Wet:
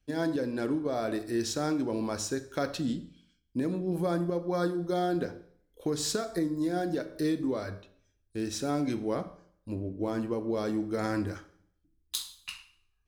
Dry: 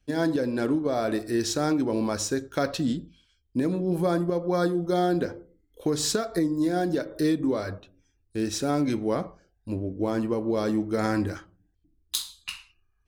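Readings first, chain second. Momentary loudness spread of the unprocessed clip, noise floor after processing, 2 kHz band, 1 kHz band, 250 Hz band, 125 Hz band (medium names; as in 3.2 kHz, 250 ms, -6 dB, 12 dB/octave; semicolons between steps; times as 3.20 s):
10 LU, -73 dBFS, -5.0 dB, -5.0 dB, -5.0 dB, -5.0 dB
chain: Schroeder reverb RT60 0.63 s, combs from 31 ms, DRR 13.5 dB; trim -5 dB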